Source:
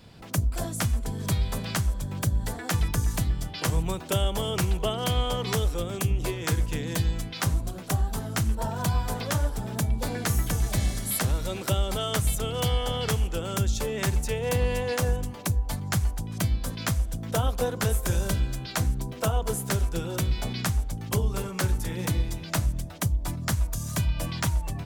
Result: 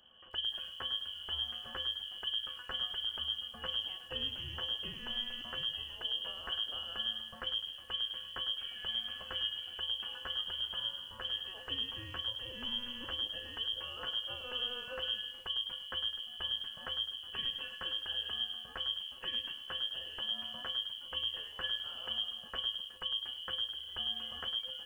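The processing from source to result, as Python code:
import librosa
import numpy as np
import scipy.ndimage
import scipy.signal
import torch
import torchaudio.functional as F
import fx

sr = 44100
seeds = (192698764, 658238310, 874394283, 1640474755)

p1 = fx.curve_eq(x, sr, hz=(310.0, 950.0, 1600.0), db=(0, -20, 4))
p2 = fx.rider(p1, sr, range_db=10, speed_s=0.5)
p3 = p1 + F.gain(torch.from_numpy(p2), 1.0).numpy()
p4 = fx.comb_fb(p3, sr, f0_hz=300.0, decay_s=0.48, harmonics='odd', damping=0.0, mix_pct=90)
p5 = fx.freq_invert(p4, sr, carrier_hz=3200)
p6 = fx.echo_crushed(p5, sr, ms=103, feedback_pct=35, bits=9, wet_db=-10.5)
y = F.gain(torch.from_numpy(p6), -2.0).numpy()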